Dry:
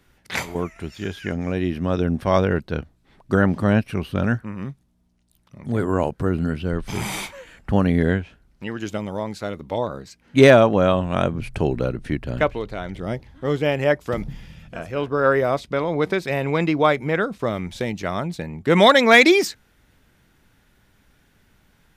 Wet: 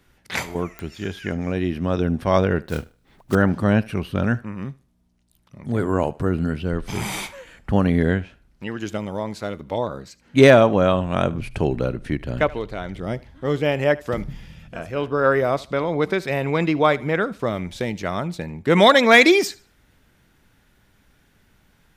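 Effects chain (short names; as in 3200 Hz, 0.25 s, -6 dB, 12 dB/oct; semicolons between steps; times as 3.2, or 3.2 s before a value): 2.63–3.36 block floating point 5-bit; thinning echo 75 ms, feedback 28%, high-pass 230 Hz, level -21 dB; pops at 0.79, -18 dBFS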